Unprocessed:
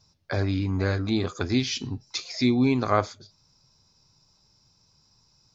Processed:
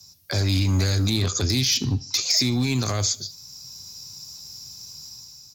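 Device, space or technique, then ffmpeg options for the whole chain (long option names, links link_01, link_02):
FM broadcast chain: -filter_complex "[0:a]asettb=1/sr,asplit=3[link_01][link_02][link_03];[link_01]atrim=end=1.104[link_04];[link_02]atrim=start=1.1:end=2.18,asetpts=PTS-STARTPTS,afade=type=in:duration=0.004:curve=qsin,afade=type=out:start_time=1.076:duration=0.004:curve=qsin,lowpass=frequency=6000:width=0.5412,lowpass=frequency=6000:width=1.3066[link_05];[link_03]atrim=start=2.176[link_06];[link_04][link_05]acrossfade=duration=0.004:curve1=hsin:curve2=qsin[link_07];[link_07][link_06]acrossfade=duration=0.004:curve1=qsin:curve2=hsin,highpass=frequency=52:width=0.5412,highpass=frequency=52:width=1.3066,dynaudnorm=framelen=130:gausssize=7:maxgain=8dB,acrossover=split=130|760|2300|6600[link_08][link_09][link_10][link_11][link_12];[link_08]acompressor=threshold=-24dB:ratio=4[link_13];[link_09]acompressor=threshold=-26dB:ratio=4[link_14];[link_10]acompressor=threshold=-38dB:ratio=4[link_15];[link_11]acompressor=threshold=-36dB:ratio=4[link_16];[link_12]acompressor=threshold=-45dB:ratio=4[link_17];[link_13][link_14][link_15][link_16][link_17]amix=inputs=5:normalize=0,aemphasis=mode=production:type=75fm,alimiter=limit=-18dB:level=0:latency=1:release=19,asoftclip=type=hard:threshold=-20.5dB,lowpass=frequency=15000:width=0.5412,lowpass=frequency=15000:width=1.3066,aemphasis=mode=production:type=75fm,lowshelf=frequency=250:gain=7.5,aecho=1:1:75|150|225:0.0708|0.0297|0.0125"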